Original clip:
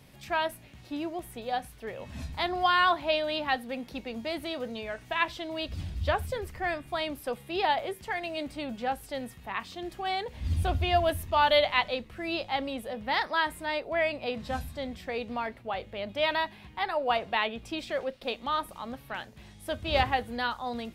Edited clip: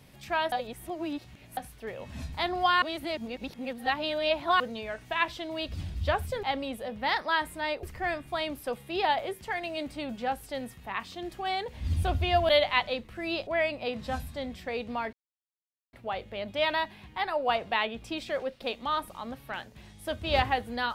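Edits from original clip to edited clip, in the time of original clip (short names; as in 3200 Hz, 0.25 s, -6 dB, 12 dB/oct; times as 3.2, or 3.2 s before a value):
0.52–1.57 reverse
2.82–4.6 reverse
11.09–11.5 cut
12.48–13.88 move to 6.43
15.54 insert silence 0.80 s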